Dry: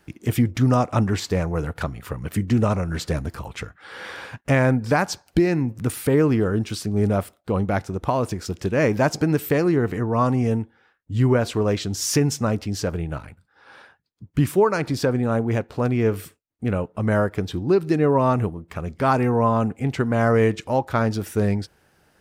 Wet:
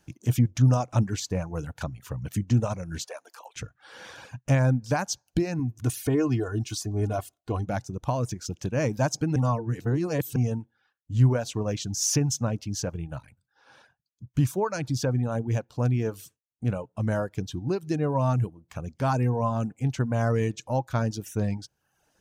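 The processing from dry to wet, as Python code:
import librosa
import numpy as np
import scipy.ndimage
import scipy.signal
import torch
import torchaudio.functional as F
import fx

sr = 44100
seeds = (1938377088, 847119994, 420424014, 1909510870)

y = fx.highpass(x, sr, hz=510.0, slope=24, at=(3.04, 3.56))
y = fx.comb(y, sr, ms=2.8, depth=0.71, at=(5.59, 7.67))
y = fx.edit(y, sr, fx.reverse_span(start_s=9.36, length_s=1.0), tone=tone)
y = fx.graphic_eq_31(y, sr, hz=(125, 400, 1250, 2000, 6300), db=(8, -6, -5, -7, 10))
y = fx.dereverb_blind(y, sr, rt60_s=0.67)
y = y * librosa.db_to_amplitude(-5.5)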